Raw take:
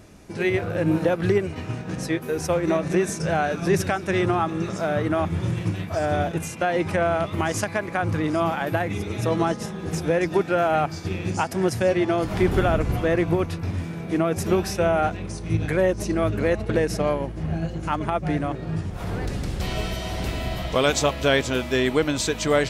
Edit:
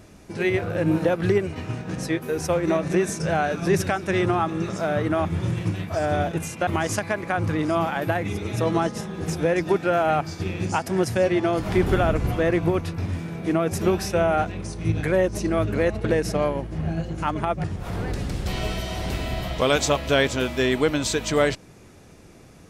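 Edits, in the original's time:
6.67–7.32 s: delete
18.29–18.78 s: delete

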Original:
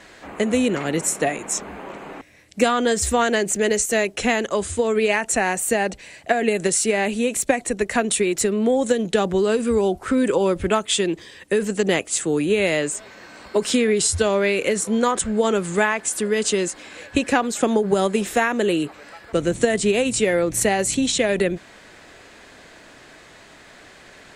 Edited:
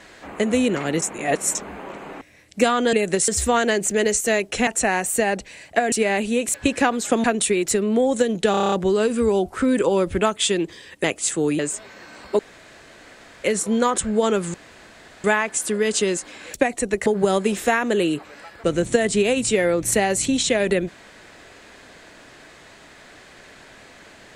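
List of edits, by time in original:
1.02–1.55 s: reverse
4.32–5.20 s: delete
6.45–6.80 s: move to 2.93 s
7.42–7.94 s: swap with 17.05–17.75 s
9.21 s: stutter 0.03 s, 8 plays
11.53–11.93 s: delete
12.48–12.80 s: delete
13.60–14.65 s: room tone
15.75 s: insert room tone 0.70 s

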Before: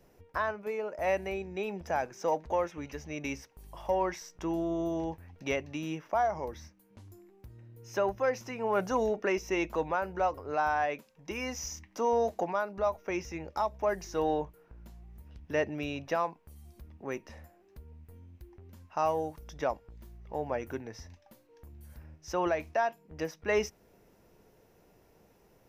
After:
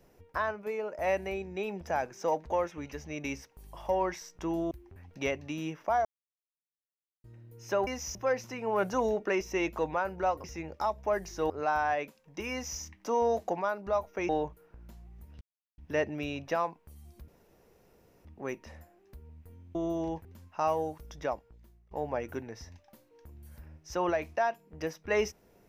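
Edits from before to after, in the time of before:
4.71–5.21 s: swap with 18.38–18.63 s
6.30–7.49 s: mute
11.43–11.71 s: copy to 8.12 s
13.20–14.26 s: move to 10.41 s
15.38 s: insert silence 0.37 s
16.88 s: insert room tone 0.97 s
19.50–20.29 s: fade out, to -18.5 dB

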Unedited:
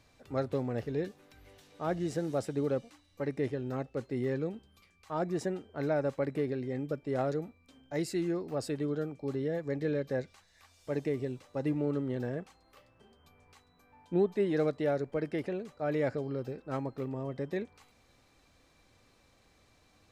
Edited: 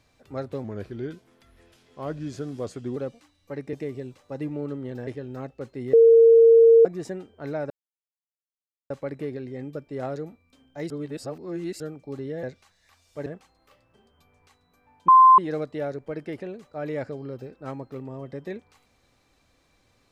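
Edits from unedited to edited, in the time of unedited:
0.64–2.66 s: speed 87%
4.29–5.21 s: bleep 458 Hz -10 dBFS
6.06 s: insert silence 1.20 s
8.06–8.96 s: reverse
9.59–10.15 s: delete
10.98–12.32 s: move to 3.43 s
14.14–14.44 s: bleep 1.04 kHz -9 dBFS

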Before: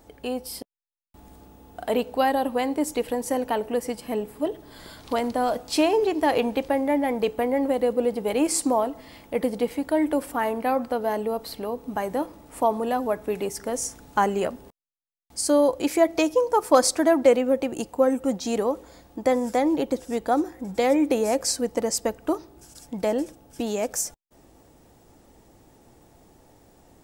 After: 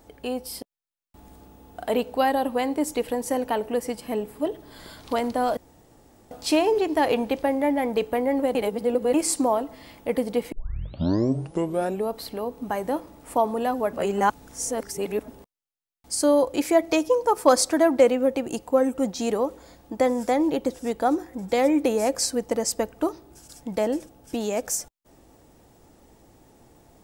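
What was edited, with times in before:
5.57 s: insert room tone 0.74 s
7.81–8.40 s: reverse
9.78 s: tape start 1.58 s
13.19–14.54 s: reverse

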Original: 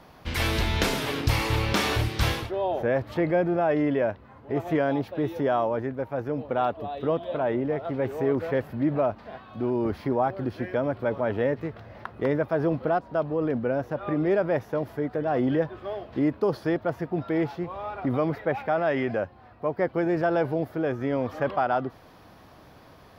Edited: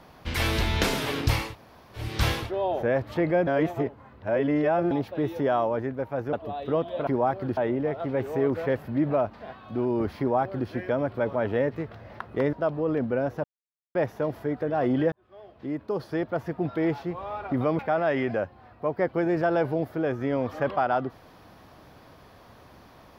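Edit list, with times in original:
1.44–2.05 s: room tone, crossfade 0.24 s
3.47–4.91 s: reverse
6.33–6.68 s: delete
10.04–10.54 s: copy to 7.42 s
12.38–13.06 s: delete
13.97–14.48 s: mute
15.65–17.08 s: fade in
18.32–18.59 s: delete

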